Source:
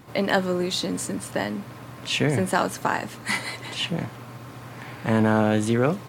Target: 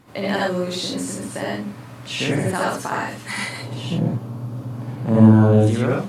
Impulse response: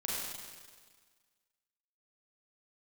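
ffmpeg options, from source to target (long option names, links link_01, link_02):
-filter_complex "[0:a]asettb=1/sr,asplit=3[link_01][link_02][link_03];[link_01]atrim=end=3.534[link_04];[link_02]atrim=start=3.53:end=5.67,asetpts=PTS-STARTPTS,afade=type=in:duration=0.004:curve=qsin,afade=type=out:start_time=2.136:duration=0.004:curve=qsin,equalizer=frequency=125:width_type=o:width=1:gain=8,equalizer=frequency=250:width_type=o:width=1:gain=7,equalizer=frequency=500:width_type=o:width=1:gain=3,equalizer=frequency=2000:width_type=o:width=1:gain=-11,equalizer=frequency=4000:width_type=o:width=1:gain=-3,equalizer=frequency=8000:width_type=o:width=1:gain=-5[link_05];[link_03]atrim=start=5.666[link_06];[link_04][link_05]acrossfade=duration=0.004:curve1=hsin:curve2=qsin[link_07];[link_07][link_06]acrossfade=duration=0.004:curve1=qsin:curve2=hsin[link_08];[1:a]atrim=start_sample=2205,atrim=end_sample=3528,asetrate=26019,aresample=44100[link_09];[link_08][link_09]afir=irnorm=-1:irlink=0,volume=-4dB"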